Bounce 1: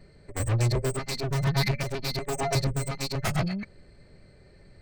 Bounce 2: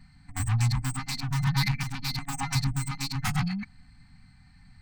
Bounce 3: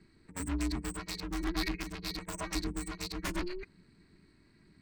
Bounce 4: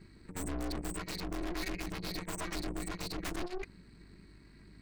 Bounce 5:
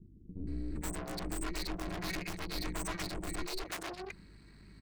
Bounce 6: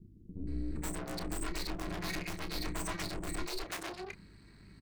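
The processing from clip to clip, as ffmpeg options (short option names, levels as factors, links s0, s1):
-af "afftfilt=real='re*(1-between(b*sr/4096,280,720))':imag='im*(1-between(b*sr/4096,280,720))':win_size=4096:overlap=0.75"
-af "lowshelf=f=110:g=-4.5,aeval=exprs='val(0)*sin(2*PI*180*n/s)':c=same,volume=0.668"
-af "aeval=exprs='val(0)+0.000708*(sin(2*PI*50*n/s)+sin(2*PI*2*50*n/s)/2+sin(2*PI*3*50*n/s)/3+sin(2*PI*4*50*n/s)/4+sin(2*PI*5*50*n/s)/5)':c=same,aeval=exprs='(tanh(158*val(0)+0.7)-tanh(0.7))/158':c=same,volume=2.66"
-filter_complex "[0:a]acrossover=split=360[s0][s1];[s1]adelay=470[s2];[s0][s2]amix=inputs=2:normalize=0,volume=1.12"
-filter_complex "[0:a]asplit=2[s0][s1];[s1]adelay=30,volume=0.299[s2];[s0][s2]amix=inputs=2:normalize=0"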